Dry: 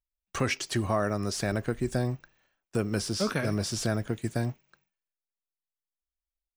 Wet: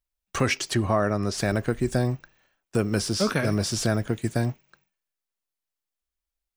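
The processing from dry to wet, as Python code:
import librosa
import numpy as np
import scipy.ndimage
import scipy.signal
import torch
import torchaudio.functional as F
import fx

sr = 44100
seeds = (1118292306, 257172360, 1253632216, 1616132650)

y = fx.high_shelf(x, sr, hz=fx.line((0.73, 4600.0), (1.37, 7000.0)), db=-10.0, at=(0.73, 1.37), fade=0.02)
y = F.gain(torch.from_numpy(y), 4.5).numpy()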